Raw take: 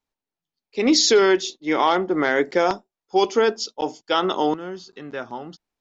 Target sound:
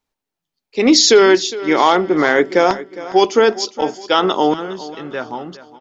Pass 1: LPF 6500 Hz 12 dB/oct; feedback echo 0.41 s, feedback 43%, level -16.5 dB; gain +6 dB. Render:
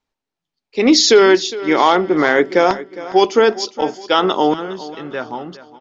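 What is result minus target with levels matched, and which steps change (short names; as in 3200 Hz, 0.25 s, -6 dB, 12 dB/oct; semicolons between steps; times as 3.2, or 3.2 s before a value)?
8000 Hz band -2.5 dB
remove: LPF 6500 Hz 12 dB/oct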